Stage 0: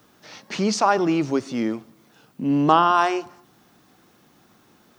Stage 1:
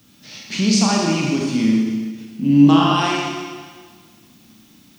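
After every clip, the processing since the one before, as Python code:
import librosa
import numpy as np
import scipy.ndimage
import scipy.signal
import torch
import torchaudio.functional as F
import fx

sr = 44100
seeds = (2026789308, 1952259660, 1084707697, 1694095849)

y = fx.band_shelf(x, sr, hz=790.0, db=-12.0, octaves=2.6)
y = fx.rev_schroeder(y, sr, rt60_s=1.6, comb_ms=28, drr_db=-2.5)
y = fx.end_taper(y, sr, db_per_s=110.0)
y = y * 10.0 ** (5.0 / 20.0)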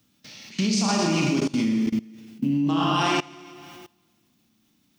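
y = fx.level_steps(x, sr, step_db=22)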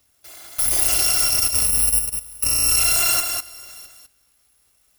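y = fx.bit_reversed(x, sr, seeds[0], block=256)
y = y + 10.0 ** (-5.5 / 20.0) * np.pad(y, (int(201 * sr / 1000.0), 0))[:len(y)]
y = y * 10.0 ** (3.0 / 20.0)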